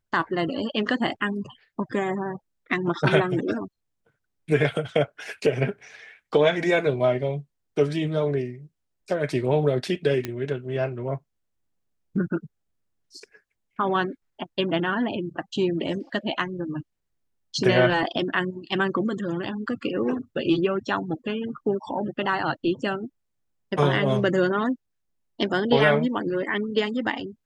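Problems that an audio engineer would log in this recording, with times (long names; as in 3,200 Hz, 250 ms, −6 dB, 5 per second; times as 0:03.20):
0:10.25: click −14 dBFS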